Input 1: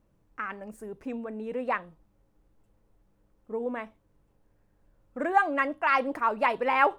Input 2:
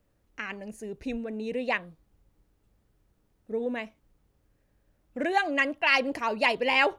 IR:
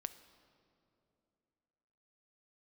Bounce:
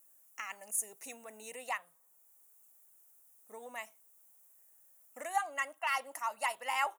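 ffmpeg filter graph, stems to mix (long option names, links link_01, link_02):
-filter_complex "[0:a]volume=-11dB,asplit=3[link_01][link_02][link_03];[link_02]volume=-22dB[link_04];[1:a]aexciter=amount=6.9:drive=9.8:freq=6600,adelay=1.1,volume=-4dB[link_05];[link_03]apad=whole_len=308150[link_06];[link_05][link_06]sidechaincompress=threshold=-41dB:ratio=5:attack=8.9:release=903[link_07];[2:a]atrim=start_sample=2205[link_08];[link_04][link_08]afir=irnorm=-1:irlink=0[link_09];[link_01][link_07][link_09]amix=inputs=3:normalize=0,highpass=680"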